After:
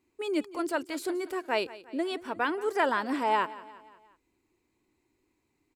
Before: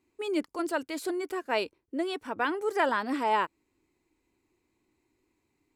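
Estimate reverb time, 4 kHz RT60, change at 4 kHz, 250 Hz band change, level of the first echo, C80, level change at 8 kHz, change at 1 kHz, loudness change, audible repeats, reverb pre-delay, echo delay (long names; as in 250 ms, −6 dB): no reverb audible, no reverb audible, 0.0 dB, 0.0 dB, −18.0 dB, no reverb audible, 0.0 dB, 0.0 dB, 0.0 dB, 3, no reverb audible, 177 ms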